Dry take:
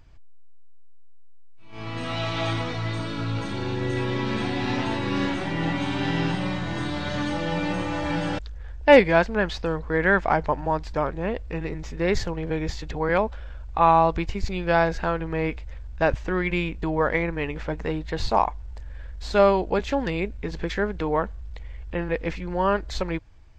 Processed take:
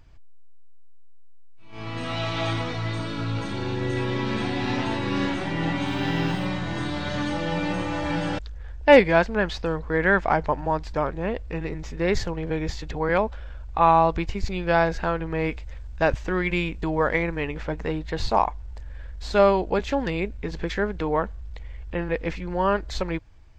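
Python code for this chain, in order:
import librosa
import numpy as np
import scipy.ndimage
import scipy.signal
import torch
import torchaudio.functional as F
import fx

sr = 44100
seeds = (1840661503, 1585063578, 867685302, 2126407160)

y = fx.dmg_noise_colour(x, sr, seeds[0], colour='blue', level_db=-65.0, at=(5.86, 6.45), fade=0.02)
y = fx.high_shelf(y, sr, hz=4800.0, db=5.5, at=(15.4, 17.41))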